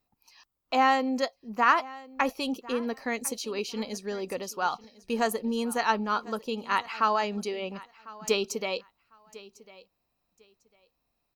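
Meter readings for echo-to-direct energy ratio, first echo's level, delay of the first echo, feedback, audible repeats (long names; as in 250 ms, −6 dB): −20.0 dB, −20.0 dB, 1,050 ms, 19%, 2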